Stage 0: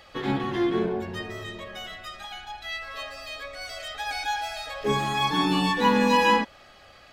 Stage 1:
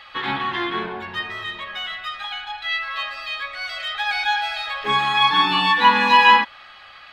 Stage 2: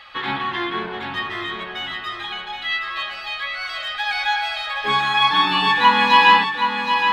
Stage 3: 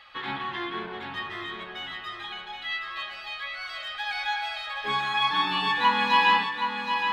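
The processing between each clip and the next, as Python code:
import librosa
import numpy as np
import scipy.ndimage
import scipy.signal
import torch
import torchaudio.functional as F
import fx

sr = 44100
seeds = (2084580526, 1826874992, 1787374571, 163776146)

y1 = fx.band_shelf(x, sr, hz=1900.0, db=15.5, octaves=2.7)
y1 = F.gain(torch.from_numpy(y1), -5.5).numpy()
y2 = fx.echo_feedback(y1, sr, ms=772, feedback_pct=32, wet_db=-6.5)
y3 = y2 + 10.0 ** (-17.5 / 20.0) * np.pad(y2, (int(169 * sr / 1000.0), 0))[:len(y2)]
y3 = F.gain(torch.from_numpy(y3), -8.0).numpy()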